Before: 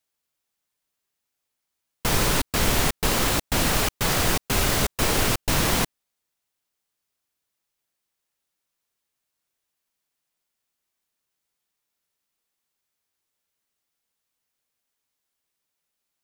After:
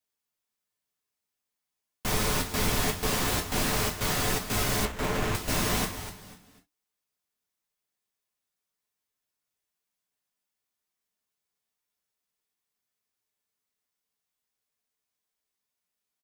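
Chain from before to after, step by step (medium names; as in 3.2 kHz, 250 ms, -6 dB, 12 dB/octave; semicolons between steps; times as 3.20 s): frequency-shifting echo 247 ms, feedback 31%, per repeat -100 Hz, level -11 dB; gated-style reverb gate 90 ms falling, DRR -0.5 dB; 4.85–5.35 s: sliding maximum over 9 samples; trim -8.5 dB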